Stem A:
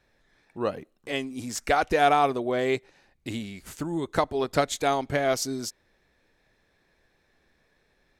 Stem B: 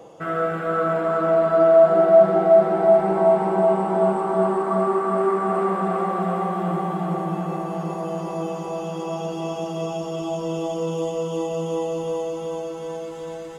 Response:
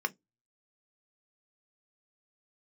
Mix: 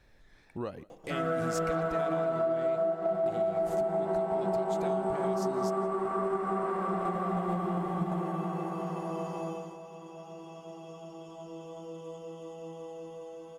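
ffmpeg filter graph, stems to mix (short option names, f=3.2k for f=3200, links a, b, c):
-filter_complex "[0:a]lowshelf=f=120:g=9.5,acompressor=threshold=-40dB:ratio=2,alimiter=level_in=4dB:limit=-24dB:level=0:latency=1:release=375,volume=-4dB,volume=1.5dB,asplit=3[a][b][c];[b]volume=-23dB[d];[1:a]adelay=900,volume=-2.5dB,afade=t=out:st=9.27:d=0.36:silence=0.298538,asplit=3[e][f][g];[f]volume=-14dB[h];[g]volume=-6dB[i];[c]apad=whole_len=638976[j];[e][j]sidechaingate=range=-33dB:threshold=-58dB:ratio=16:detection=peak[k];[2:a]atrim=start_sample=2205[l];[h][l]afir=irnorm=-1:irlink=0[m];[d][i]amix=inputs=2:normalize=0,aecho=0:1:168:1[n];[a][k][m][n]amix=inputs=4:normalize=0,acompressor=threshold=-26dB:ratio=16"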